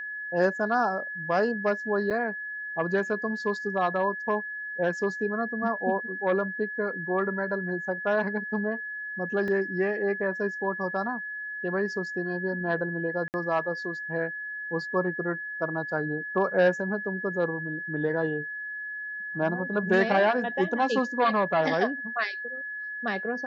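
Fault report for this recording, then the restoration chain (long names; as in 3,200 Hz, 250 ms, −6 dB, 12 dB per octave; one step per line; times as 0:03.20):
whistle 1,700 Hz −33 dBFS
0:02.10–0:02.11: drop-out 7 ms
0:09.48: drop-out 2.4 ms
0:13.28–0:13.34: drop-out 59 ms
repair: notch filter 1,700 Hz, Q 30
repair the gap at 0:02.10, 7 ms
repair the gap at 0:09.48, 2.4 ms
repair the gap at 0:13.28, 59 ms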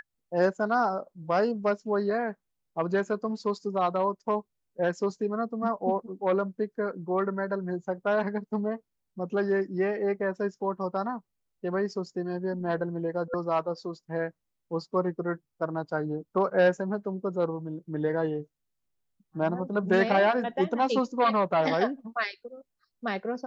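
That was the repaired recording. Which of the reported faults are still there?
none of them is left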